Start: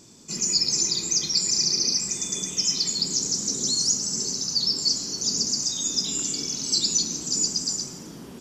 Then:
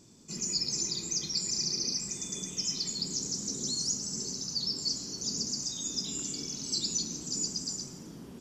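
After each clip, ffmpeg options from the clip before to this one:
ffmpeg -i in.wav -af "lowshelf=frequency=360:gain=6,volume=-9dB" out.wav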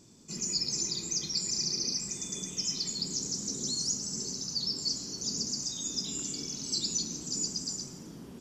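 ffmpeg -i in.wav -af anull out.wav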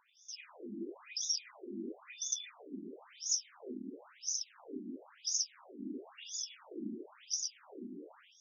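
ffmpeg -i in.wav -af "asuperstop=centerf=4300:order=4:qfactor=2.1,afftfilt=real='re*between(b*sr/1024,260*pow(4900/260,0.5+0.5*sin(2*PI*0.98*pts/sr))/1.41,260*pow(4900/260,0.5+0.5*sin(2*PI*0.98*pts/sr))*1.41)':imag='im*between(b*sr/1024,260*pow(4900/260,0.5+0.5*sin(2*PI*0.98*pts/sr))/1.41,260*pow(4900/260,0.5+0.5*sin(2*PI*0.98*pts/sr))*1.41)':win_size=1024:overlap=0.75,volume=5.5dB" out.wav

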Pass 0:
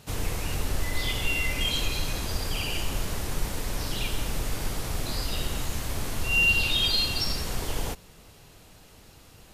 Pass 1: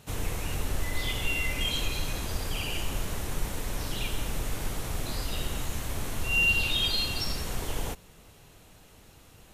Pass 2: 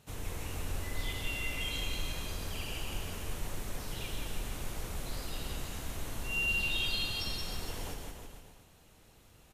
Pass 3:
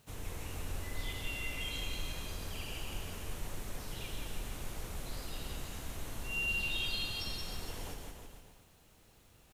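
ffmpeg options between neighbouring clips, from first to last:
ffmpeg -i in.wav -af "equalizer=frequency=4800:width_type=o:width=0.34:gain=-5,volume=-2dB" out.wav
ffmpeg -i in.wav -af "aecho=1:1:170|323|460.7|584.6|696.2:0.631|0.398|0.251|0.158|0.1,volume=-8.5dB" out.wav
ffmpeg -i in.wav -af "acrusher=bits=10:mix=0:aa=0.000001,volume=-3dB" out.wav

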